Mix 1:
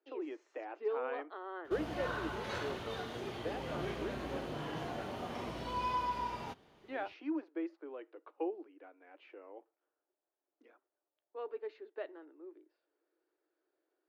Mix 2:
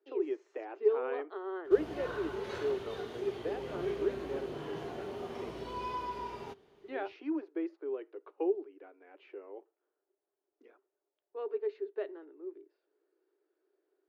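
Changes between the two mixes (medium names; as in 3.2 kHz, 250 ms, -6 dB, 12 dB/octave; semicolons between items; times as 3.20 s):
background -3.5 dB; master: add peaking EQ 400 Hz +14.5 dB 0.25 oct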